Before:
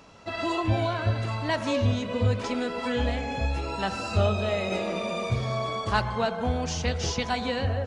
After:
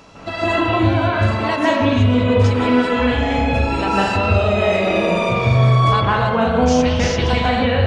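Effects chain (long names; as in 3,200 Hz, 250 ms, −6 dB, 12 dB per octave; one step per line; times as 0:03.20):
0:01.16–0:01.70: high-pass filter 190 Hz 24 dB per octave
downward compressor, threshold −27 dBFS, peak gain reduction 9.5 dB
convolution reverb RT60 0.85 s, pre-delay 152 ms, DRR −7.5 dB
level +7 dB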